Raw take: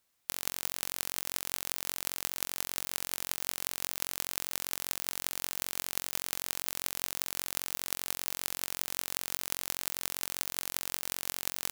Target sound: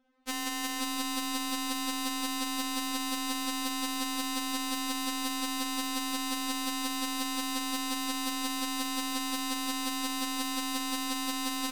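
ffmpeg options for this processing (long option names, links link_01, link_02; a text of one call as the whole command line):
ffmpeg -i in.wav -filter_complex "[0:a]highshelf=frequency=6500:gain=-8.5,asplit=2[link_01][link_02];[link_02]aecho=0:1:517:0.376[link_03];[link_01][link_03]amix=inputs=2:normalize=0,adynamicsmooth=sensitivity=8:basefreq=2100,equalizer=frequency=170:width=0.87:gain=14.5,asplit=2[link_04][link_05];[link_05]alimiter=limit=-20.5dB:level=0:latency=1,volume=0.5dB[link_06];[link_04][link_06]amix=inputs=2:normalize=0,afftfilt=real='re*3.46*eq(mod(b,12),0)':imag='im*3.46*eq(mod(b,12),0)':win_size=2048:overlap=0.75,volume=7.5dB" out.wav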